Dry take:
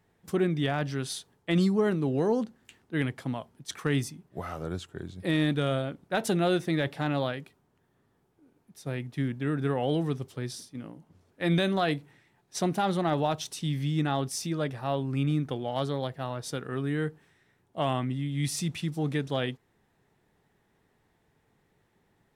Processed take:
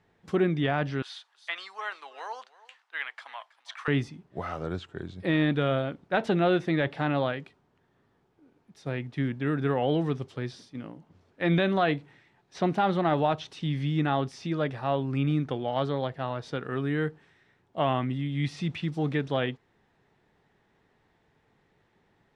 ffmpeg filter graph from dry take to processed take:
ffmpeg -i in.wav -filter_complex "[0:a]asettb=1/sr,asplit=3[link_01][link_02][link_03];[link_01]atrim=end=1.024[link_04];[link_02]atrim=start=1.02:end=3.88,asetpts=PTS-STARTPTS,afade=type=in:duration=0.004:curve=qsin,afade=type=out:start_time=2.856:duration=0.004:curve=qsin,highpass=frequency=890:width=0.5412,highpass=frequency=890:width=1.3066,aecho=1:1:324:0.1,atrim=end_sample=126126[link_05];[link_03]atrim=start=3.876[link_06];[link_04][link_05]acrossfade=duration=0.004:curve1=hsin:curve2=qsin[link_07];[link_07][link_06]acrossfade=duration=0.004:curve1=qsin:curve2=hsin,lowpass=4900,acrossover=split=3500[link_08][link_09];[link_09]acompressor=threshold=-57dB:ratio=4:attack=1:release=60[link_10];[link_08][link_10]amix=inputs=2:normalize=0,lowshelf=frequency=350:gain=-3.5,volume=3.5dB" out.wav

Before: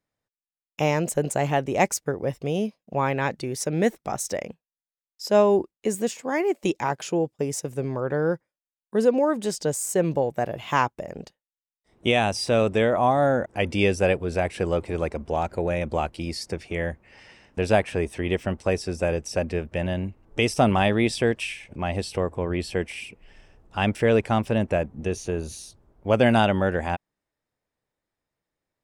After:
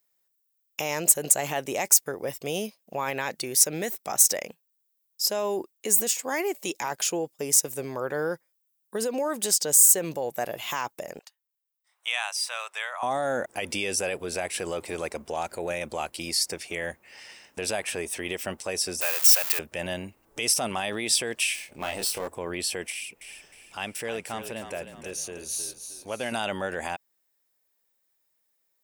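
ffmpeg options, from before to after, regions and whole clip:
ffmpeg -i in.wav -filter_complex "[0:a]asettb=1/sr,asplit=3[link_01][link_02][link_03];[link_01]atrim=end=11.194[link_04];[link_02]atrim=start=11.19:end=13.03,asetpts=PTS-STARTPTS,afade=type=in:duration=0.004:curve=qsin,afade=type=out:start_time=1.836:duration=0.004:curve=qsin,highpass=frequency=1000:width=0.5412,highpass=frequency=1000:width=1.3066,highshelf=frequency=2100:gain=-10[link_05];[link_03]atrim=start=13.026[link_06];[link_04][link_05]acrossfade=duration=0.004:curve1=hsin:curve2=qsin[link_07];[link_07][link_06]acrossfade=duration=0.004:curve1=qsin:curve2=hsin,asettb=1/sr,asplit=3[link_08][link_09][link_10];[link_08]atrim=end=19.014[link_11];[link_09]atrim=start=19.01:end=19.59,asetpts=PTS-STARTPTS,afade=type=in:duration=0.004:curve=qsin,afade=type=out:start_time=0.576:duration=0.004:curve=qsin,aeval=exprs='val(0)+0.5*0.0422*sgn(val(0))':channel_layout=same,highpass=1000[link_12];[link_10]atrim=start=19.586[link_13];[link_11][link_12]acrossfade=duration=0.004:curve1=hsin:curve2=qsin[link_14];[link_14][link_13]acrossfade=duration=0.004:curve1=qsin:curve2=hsin,asettb=1/sr,asplit=3[link_15][link_16][link_17];[link_15]atrim=end=21.554[link_18];[link_16]atrim=start=21.55:end=22.28,asetpts=PTS-STARTPTS,afade=type=in:duration=0.004:curve=qsin,afade=type=out:start_time=0.726:duration=0.004:curve=qsin,aeval=exprs='if(lt(val(0),0),0.447*val(0),val(0))':channel_layout=same,asplit=2[link_19][link_20];[link_20]adelay=26,volume=-5dB[link_21];[link_19][link_21]amix=inputs=2:normalize=0,atrim=end_sample=32193[link_22];[link_17]atrim=start=22.276[link_23];[link_18][link_22]acrossfade=duration=0.004:curve1=hsin:curve2=qsin[link_24];[link_24][link_23]acrossfade=duration=0.004:curve1=qsin:curve2=hsin,asettb=1/sr,asplit=3[link_25][link_26][link_27];[link_25]atrim=end=22.904[link_28];[link_26]atrim=start=22.9:end=26.32,asetpts=PTS-STARTPTS,afade=type=in:duration=0.004:curve=qsin,afade=type=out:start_time=3.416:duration=0.004:curve=qsin,acompressor=threshold=-45dB:ratio=1.5:attack=3.2:release=140:knee=1:detection=peak,asplit=6[link_29][link_30][link_31][link_32][link_33][link_34];[link_30]adelay=311,afreqshift=-30,volume=-9dB[link_35];[link_31]adelay=622,afreqshift=-60,volume=-16.7dB[link_36];[link_32]adelay=933,afreqshift=-90,volume=-24.5dB[link_37];[link_33]adelay=1244,afreqshift=-120,volume=-32.2dB[link_38];[link_34]adelay=1555,afreqshift=-150,volume=-40dB[link_39];[link_29][link_35][link_36][link_37][link_38][link_39]amix=inputs=6:normalize=0,atrim=end_sample=150822[link_40];[link_27]atrim=start=26.316[link_41];[link_28][link_40]acrossfade=duration=0.004:curve1=hsin:curve2=qsin[link_42];[link_42][link_41]acrossfade=duration=0.004:curve1=qsin:curve2=hsin,alimiter=limit=-18dB:level=0:latency=1:release=42,aemphasis=mode=production:type=riaa" out.wav

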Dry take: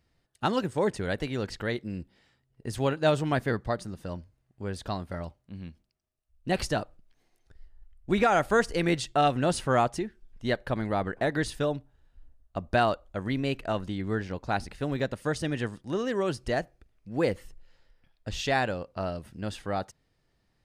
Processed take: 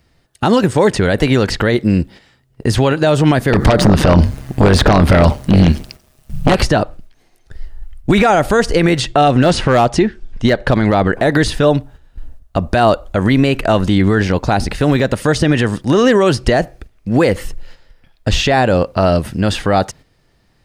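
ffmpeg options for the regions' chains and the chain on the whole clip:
ffmpeg -i in.wav -filter_complex "[0:a]asettb=1/sr,asplit=3[link_01][link_02][link_03];[link_01]atrim=end=3.534[link_04];[link_02]atrim=start=3.53:end=6.55,asetpts=PTS-STARTPTS,afade=type=in:duration=0.004:curve=qsin,afade=type=out:start_time=3.016:duration=0.004:curve=qsin,acompressor=threshold=-37dB:ratio=12:attack=3.2:release=140:knee=1:detection=peak,tremolo=f=140:d=0.71,aeval=exprs='0.0841*sin(PI/2*8.91*val(0)/0.0841)':channel_layout=same[link_05];[link_03]atrim=start=6.546[link_06];[link_04][link_05]acrossfade=duration=0.004:curve1=hsin:curve2=qsin[link_07];[link_07][link_06]acrossfade=duration=0.004:curve1=qsin:curve2=hsin,asettb=1/sr,asplit=3[link_08][link_09][link_10];[link_08]atrim=end=9.284[link_11];[link_09]atrim=start=9.28:end=11.13,asetpts=PTS-STARTPTS,afade=type=in:duration=0.004:curve=qsin,afade=type=out:start_time=1.846:duration=0.004:curve=qsin,lowpass=6800,asoftclip=type=hard:threshold=-18dB[link_12];[link_10]atrim=start=11.126[link_13];[link_11][link_12]acrossfade=duration=0.004:curve1=hsin:curve2=qsin[link_14];[link_14][link_13]acrossfade=duration=0.004:curve1=qsin:curve2=hsin,agate=range=-8dB:threshold=-55dB:ratio=16:detection=peak,acrossover=split=890|2400|5700[link_15][link_16][link_17][link_18];[link_15]acompressor=threshold=-28dB:ratio=4[link_19];[link_16]acompressor=threshold=-39dB:ratio=4[link_20];[link_17]acompressor=threshold=-46dB:ratio=4[link_21];[link_18]acompressor=threshold=-56dB:ratio=4[link_22];[link_19][link_20][link_21][link_22]amix=inputs=4:normalize=0,alimiter=level_in=24dB:limit=-1dB:release=50:level=0:latency=1,volume=-1dB" out.wav

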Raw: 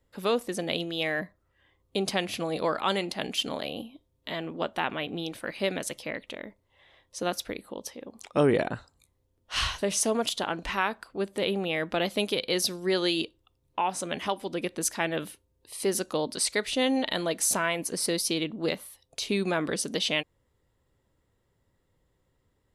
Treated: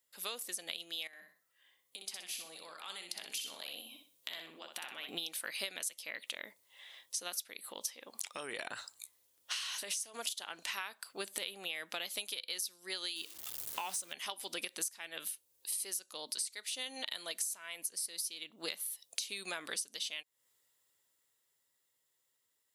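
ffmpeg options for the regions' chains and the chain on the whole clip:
ffmpeg -i in.wav -filter_complex "[0:a]asettb=1/sr,asplit=3[link_01][link_02][link_03];[link_01]atrim=end=1.074[link_04];[link_02]atrim=start=1.07:end=5.08,asetpts=PTS-STARTPTS,afade=type=in:duration=0.004:curve=qsin,afade=type=out:start_time=4.006:duration=0.004:curve=qsin,acompressor=threshold=-44dB:ratio=5:attack=3.2:release=140:knee=1:detection=peak,aecho=1:1:62|124|186|248:0.531|0.159|0.0478|0.0143,atrim=end_sample=176841[link_05];[link_03]atrim=start=5.076[link_06];[link_04][link_05]acrossfade=duration=0.004:curve1=hsin:curve2=qsin[link_07];[link_07][link_06]acrossfade=duration=0.004:curve1=qsin:curve2=hsin,asettb=1/sr,asplit=3[link_08][link_09][link_10];[link_08]atrim=end=7.624[link_11];[link_09]atrim=start=7.62:end=10.14,asetpts=PTS-STARTPTS,afade=type=in:duration=0.004:curve=qsin,afade=type=out:start_time=2.516:duration=0.004:curve=qsin,equalizer=frequency=1600:width_type=o:width=2.9:gain=4,acompressor=threshold=-32dB:ratio=6:attack=3.2:release=140:knee=1:detection=peak[link_12];[link_10]atrim=start=10.136[link_13];[link_11][link_12]acrossfade=duration=0.004:curve1=hsin:curve2=qsin[link_14];[link_14][link_13]acrossfade=duration=0.004:curve1=qsin:curve2=hsin,asettb=1/sr,asplit=3[link_15][link_16][link_17];[link_15]atrim=end=13.164[link_18];[link_16]atrim=start=13.16:end=14.13,asetpts=PTS-STARTPTS,afade=type=in:duration=0.004:curve=qsin,afade=type=out:start_time=0.966:duration=0.004:curve=qsin,aeval=exprs='val(0)+0.5*0.00891*sgn(val(0))':channel_layout=same,lowshelf=frequency=280:gain=6.5[link_19];[link_17]atrim=start=14.126[link_20];[link_18][link_19]acrossfade=duration=0.004:curve1=hsin:curve2=qsin[link_21];[link_21][link_20]acrossfade=duration=0.004:curve1=qsin:curve2=hsin,dynaudnorm=framelen=170:gausssize=31:maxgain=10dB,aderivative,acompressor=threshold=-41dB:ratio=20,volume=5.5dB" out.wav

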